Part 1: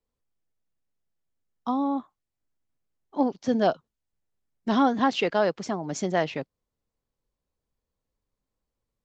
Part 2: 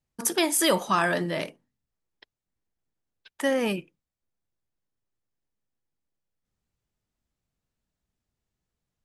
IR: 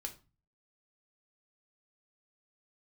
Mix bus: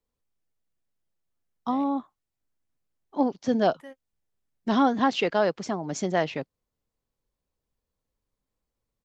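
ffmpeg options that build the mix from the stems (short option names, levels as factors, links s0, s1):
-filter_complex "[0:a]volume=1,asplit=2[s0][s1];[1:a]equalizer=f=8000:w=0.55:g=-8.5,adelay=400,volume=0.112[s2];[s1]apad=whole_len=416555[s3];[s2][s3]sidechaingate=range=0.001:threshold=0.00398:ratio=16:detection=peak[s4];[s0][s4]amix=inputs=2:normalize=0"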